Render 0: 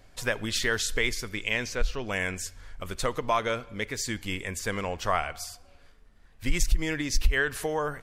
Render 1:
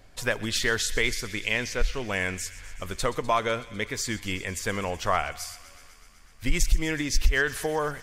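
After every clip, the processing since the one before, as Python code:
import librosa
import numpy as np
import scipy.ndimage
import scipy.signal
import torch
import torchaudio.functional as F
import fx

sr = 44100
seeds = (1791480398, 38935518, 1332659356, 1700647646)

y = fx.echo_wet_highpass(x, sr, ms=125, feedback_pct=79, hz=2000.0, wet_db=-16)
y = F.gain(torch.from_numpy(y), 1.5).numpy()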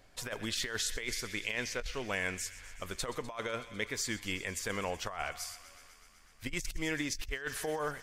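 y = fx.low_shelf(x, sr, hz=200.0, db=-6.0)
y = fx.over_compress(y, sr, threshold_db=-28.0, ratio=-0.5)
y = F.gain(torch.from_numpy(y), -6.5).numpy()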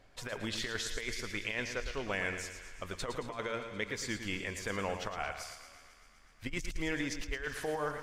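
y = fx.lowpass(x, sr, hz=3700.0, slope=6)
y = fx.echo_feedback(y, sr, ms=111, feedback_pct=50, wet_db=-9)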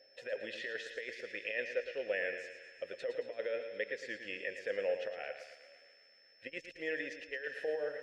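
y = fx.vowel_filter(x, sr, vowel='e')
y = fx.low_shelf(y, sr, hz=110.0, db=-7.5)
y = y + 10.0 ** (-72.0 / 20.0) * np.sin(2.0 * np.pi * 5300.0 * np.arange(len(y)) / sr)
y = F.gain(torch.from_numpy(y), 8.5).numpy()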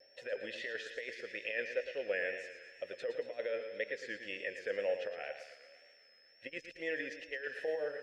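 y = fx.wow_flutter(x, sr, seeds[0], rate_hz=2.1, depth_cents=48.0)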